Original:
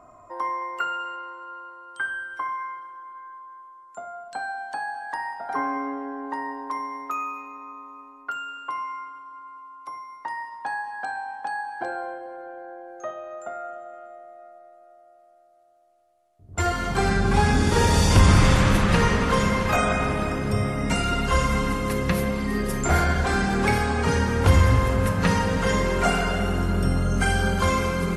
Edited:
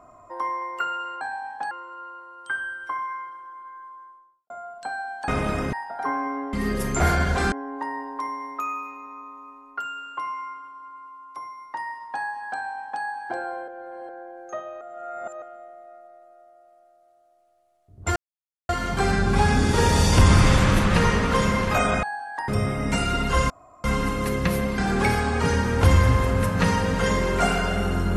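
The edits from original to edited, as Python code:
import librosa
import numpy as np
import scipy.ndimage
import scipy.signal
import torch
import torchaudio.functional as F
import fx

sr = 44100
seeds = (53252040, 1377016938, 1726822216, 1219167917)

y = fx.studio_fade_out(x, sr, start_s=3.44, length_s=0.56)
y = fx.edit(y, sr, fx.swap(start_s=4.78, length_s=0.45, other_s=20.01, other_length_s=0.45),
    fx.duplicate(start_s=11.05, length_s=0.5, to_s=1.21),
    fx.reverse_span(start_s=12.19, length_s=0.41),
    fx.reverse_span(start_s=13.32, length_s=0.61),
    fx.insert_silence(at_s=16.67, length_s=0.53),
    fx.insert_room_tone(at_s=21.48, length_s=0.34),
    fx.move(start_s=22.42, length_s=0.99, to_s=6.03), tone=tone)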